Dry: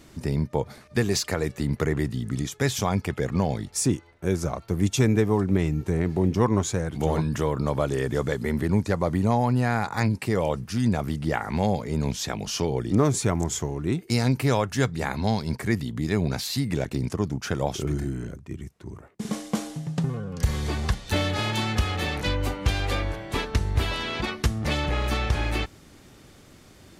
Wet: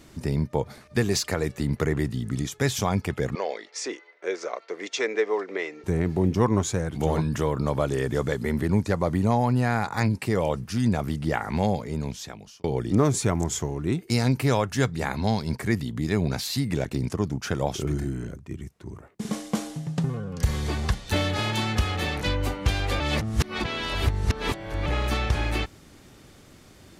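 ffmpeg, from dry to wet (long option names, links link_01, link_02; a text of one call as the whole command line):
ffmpeg -i in.wav -filter_complex "[0:a]asettb=1/sr,asplit=3[link_01][link_02][link_03];[link_01]atrim=end=3.354[link_04];[link_02]atrim=start=3.35:end=5.84,asetpts=PTS-STARTPTS,afade=type=in:duration=0.004:curve=qsin,afade=type=out:start_time=2.486:duration=0.004:curve=qsin,highpass=frequency=420:width=0.5412,highpass=frequency=420:width=1.3066,equalizer=frequency=460:width_type=q:width=4:gain=4,equalizer=frequency=840:width_type=q:width=4:gain=-4,equalizer=frequency=2000:width_type=q:width=4:gain=8,lowpass=frequency=5900:width=0.5412,lowpass=frequency=5900:width=1.3066[link_05];[link_03]atrim=start=5.836[link_06];[link_04][link_05]acrossfade=duration=0.004:curve1=hsin:curve2=qsin[link_07];[link_07][link_06]acrossfade=duration=0.004:curve1=qsin:curve2=hsin,asplit=4[link_08][link_09][link_10][link_11];[link_08]atrim=end=12.64,asetpts=PTS-STARTPTS,afade=type=out:start_time=11.65:duration=0.99[link_12];[link_09]atrim=start=12.64:end=23.002,asetpts=PTS-STARTPTS,afade=type=in:duration=0.004:curve=hsin[link_13];[link_10]atrim=start=22.998:end=24.862,asetpts=PTS-STARTPTS,areverse[link_14];[link_11]atrim=start=24.858[link_15];[link_12][link_13]concat=n=2:v=0:a=1[link_16];[link_16][link_14]acrossfade=duration=0.004:curve1=hsin:curve2=hsin[link_17];[link_17][link_15]acrossfade=duration=0.004:curve1=hsin:curve2=hsin" out.wav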